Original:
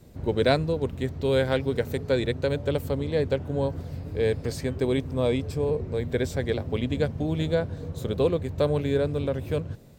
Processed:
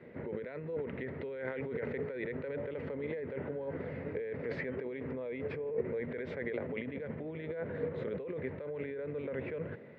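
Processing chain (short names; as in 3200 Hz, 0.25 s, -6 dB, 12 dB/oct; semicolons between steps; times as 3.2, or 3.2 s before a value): negative-ratio compressor -33 dBFS, ratio -1; speaker cabinet 280–2200 Hz, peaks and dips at 300 Hz -5 dB, 470 Hz +3 dB, 740 Hz -8 dB, 1100 Hz -5 dB, 2000 Hz +9 dB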